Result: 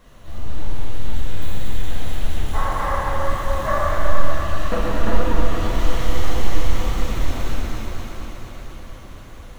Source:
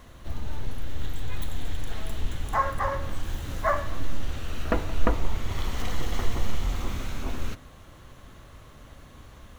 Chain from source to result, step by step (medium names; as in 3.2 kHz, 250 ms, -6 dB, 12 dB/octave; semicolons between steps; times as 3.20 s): on a send: echo whose repeats swap between lows and highs 118 ms, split 900 Hz, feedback 85%, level -3.5 dB; on the sum: plate-style reverb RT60 2.9 s, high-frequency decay 0.9×, DRR -7.5 dB; flange 1.7 Hz, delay 3.4 ms, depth 8.4 ms, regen -48%